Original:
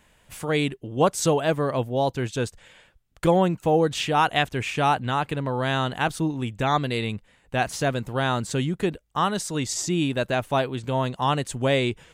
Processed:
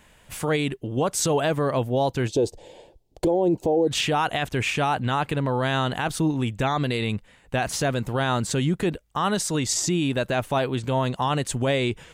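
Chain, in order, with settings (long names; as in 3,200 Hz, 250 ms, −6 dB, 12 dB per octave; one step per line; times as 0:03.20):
0:02.28–0:03.88: drawn EQ curve 220 Hz 0 dB, 350 Hz +14 dB, 880 Hz +6 dB, 1,300 Hz −18 dB, 4,600 Hz 0 dB, 8,700 Hz −5 dB
brickwall limiter −18.5 dBFS, peak gain reduction 19.5 dB
level +4.5 dB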